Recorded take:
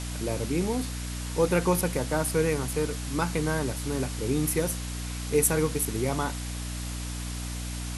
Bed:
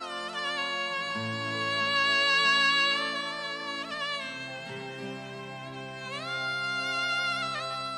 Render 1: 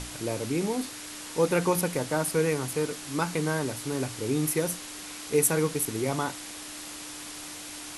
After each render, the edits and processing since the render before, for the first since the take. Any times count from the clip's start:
mains-hum notches 60/120/180/240 Hz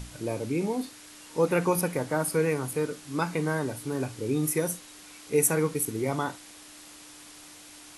noise reduction from a noise print 8 dB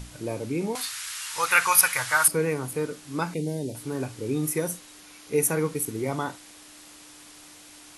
0:00.75–0:02.28: drawn EQ curve 120 Hz 0 dB, 170 Hz −20 dB, 400 Hz −17 dB, 1,300 Hz +14 dB
0:03.34–0:03.75: Butterworth band-reject 1,300 Hz, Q 0.54
0:05.00–0:05.65: notch filter 7,900 Hz, Q 8.9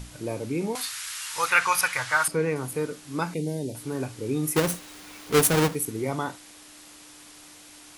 0:01.50–0:02.56: high-frequency loss of the air 53 metres
0:04.56–0:05.75: each half-wave held at its own peak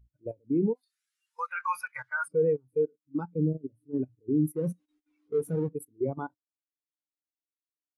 output level in coarse steps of 15 dB
every bin expanded away from the loudest bin 2.5 to 1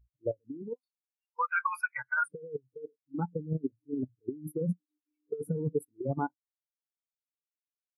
compressor whose output falls as the input rises −31 dBFS, ratio −0.5
every bin expanded away from the loudest bin 1.5 to 1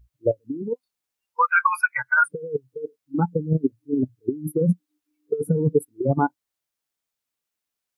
level +11 dB

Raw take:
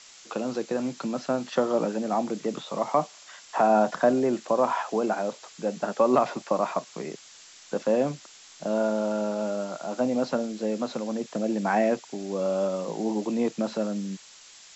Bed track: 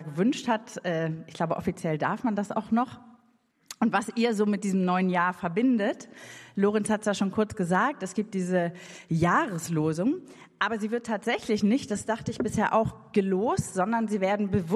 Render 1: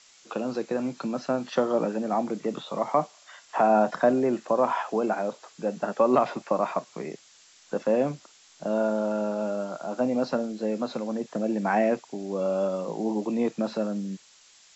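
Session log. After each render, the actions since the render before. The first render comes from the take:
noise reduction from a noise print 6 dB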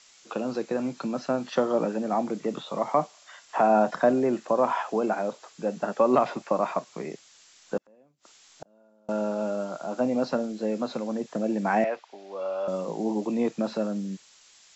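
0:07.77–0:09.09: gate with flip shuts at −26 dBFS, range −35 dB
0:11.84–0:12.68: three-way crossover with the lows and the highs turned down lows −23 dB, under 510 Hz, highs −23 dB, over 4,800 Hz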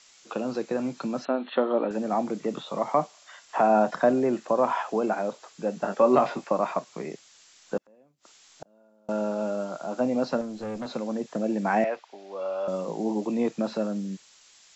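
0:01.25–0:01.91: linear-phase brick-wall band-pass 200–4,300 Hz
0:05.80–0:06.48: double-tracking delay 21 ms −7 dB
0:10.41–0:10.86: tube saturation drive 29 dB, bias 0.3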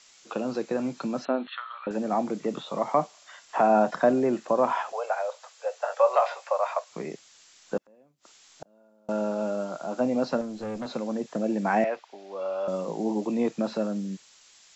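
0:01.47–0:01.87: Chebyshev high-pass filter 1,200 Hz, order 4
0:04.92–0:06.91: Butterworth high-pass 490 Hz 72 dB per octave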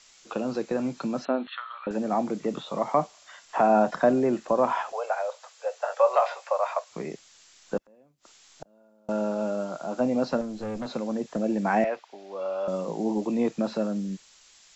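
low-shelf EQ 67 Hz +11.5 dB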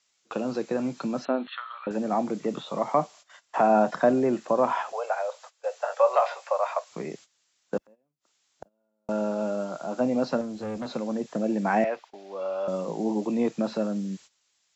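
high-pass filter 73 Hz
noise gate −46 dBFS, range −16 dB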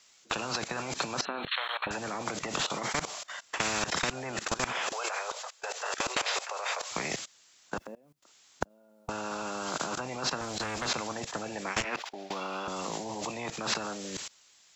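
output level in coarse steps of 21 dB
every bin compressed towards the loudest bin 10 to 1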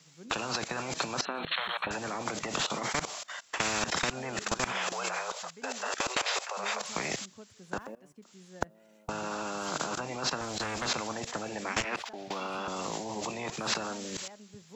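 mix in bed track −25 dB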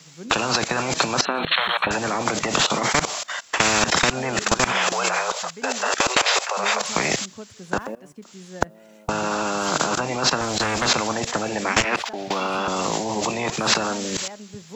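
level +11.5 dB
brickwall limiter −1 dBFS, peak gain reduction 1.5 dB

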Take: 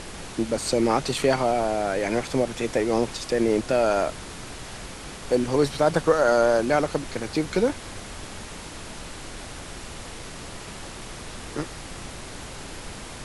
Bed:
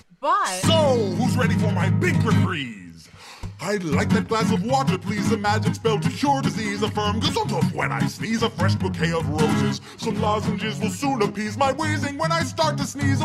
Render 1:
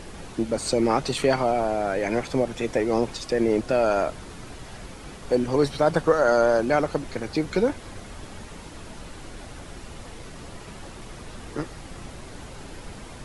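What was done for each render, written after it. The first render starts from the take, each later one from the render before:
broadband denoise 7 dB, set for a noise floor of −39 dBFS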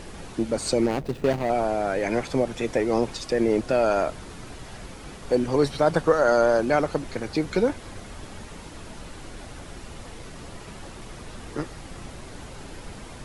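0:00.86–0:01.50: running median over 41 samples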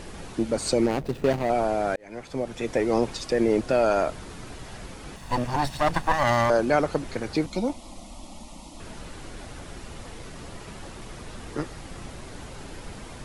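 0:01.96–0:02.84: fade in linear
0:05.16–0:06.50: lower of the sound and its delayed copy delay 1.1 ms
0:07.46–0:08.80: phaser with its sweep stopped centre 430 Hz, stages 6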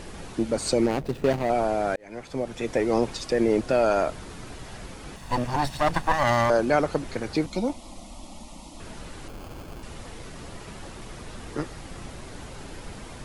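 0:09.28–0:09.83: sample-rate reduction 1,900 Hz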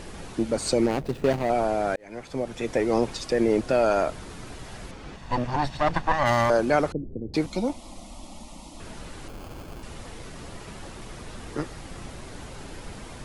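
0:04.91–0:06.26: high-frequency loss of the air 84 metres
0:06.92–0:07.34: inverse Chebyshev low-pass filter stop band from 1,800 Hz, stop band 70 dB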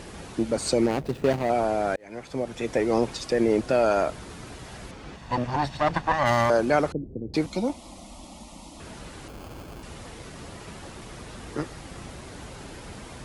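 high-pass filter 41 Hz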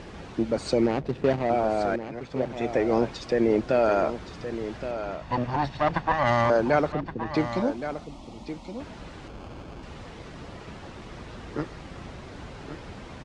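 high-frequency loss of the air 120 metres
single-tap delay 1,120 ms −10.5 dB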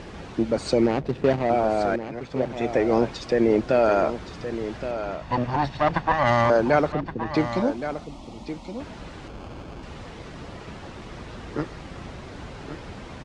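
level +2.5 dB

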